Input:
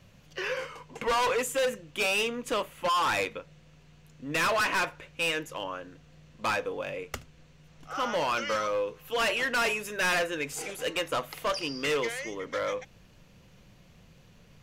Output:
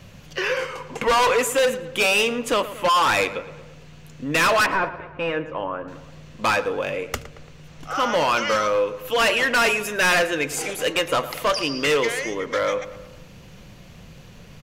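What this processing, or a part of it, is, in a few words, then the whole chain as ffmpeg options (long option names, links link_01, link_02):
parallel compression: -filter_complex "[0:a]asettb=1/sr,asplit=3[link_01][link_02][link_03];[link_01]atrim=end=4.664[link_04];[link_02]atrim=start=4.66:end=5.88,asetpts=PTS-STARTPTS,afade=type=in:duration=0.004:curve=qsin,afade=type=out:start_time=1.216:duration=0.004:curve=qsin,lowpass=1400[link_05];[link_03]atrim=start=5.876[link_06];[link_04][link_05]acrossfade=duration=0.004:curve1=hsin:curve2=qsin[link_07];[link_07][link_06]acrossfade=duration=0.004:curve1=qsin:curve2=hsin,asplit=2[link_08][link_09];[link_09]adelay=113,lowpass=frequency=2800:poles=1,volume=-14.5dB,asplit=2[link_10][link_11];[link_11]adelay=113,lowpass=frequency=2800:poles=1,volume=0.51,asplit=2[link_12][link_13];[link_13]adelay=113,lowpass=frequency=2800:poles=1,volume=0.51,asplit=2[link_14][link_15];[link_15]adelay=113,lowpass=frequency=2800:poles=1,volume=0.51,asplit=2[link_16][link_17];[link_17]adelay=113,lowpass=frequency=2800:poles=1,volume=0.51[link_18];[link_08][link_10][link_12][link_14][link_16][link_18]amix=inputs=6:normalize=0,asplit=2[link_19][link_20];[link_20]acompressor=threshold=-42dB:ratio=6,volume=-3dB[link_21];[link_19][link_21]amix=inputs=2:normalize=0,volume=7dB"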